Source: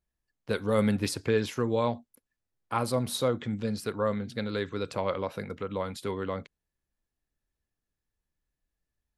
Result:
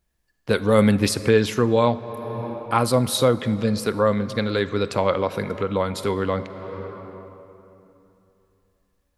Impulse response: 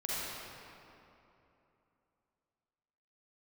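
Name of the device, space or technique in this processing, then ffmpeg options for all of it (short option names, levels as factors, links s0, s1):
ducked reverb: -filter_complex "[0:a]asplit=3[s0][s1][s2];[1:a]atrim=start_sample=2205[s3];[s1][s3]afir=irnorm=-1:irlink=0[s4];[s2]apad=whole_len=404548[s5];[s4][s5]sidechaincompress=threshold=0.00631:ratio=4:attack=28:release=390,volume=0.501[s6];[s0][s6]amix=inputs=2:normalize=0,volume=2.66"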